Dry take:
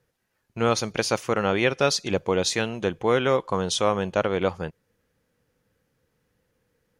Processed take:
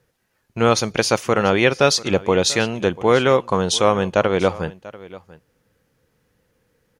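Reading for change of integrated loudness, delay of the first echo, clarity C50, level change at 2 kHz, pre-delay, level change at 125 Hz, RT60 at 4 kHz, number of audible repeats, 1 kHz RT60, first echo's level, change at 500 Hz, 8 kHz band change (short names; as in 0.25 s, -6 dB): +6.0 dB, 0.69 s, none, +6.0 dB, none, +6.0 dB, none, 1, none, -19.5 dB, +6.0 dB, +6.0 dB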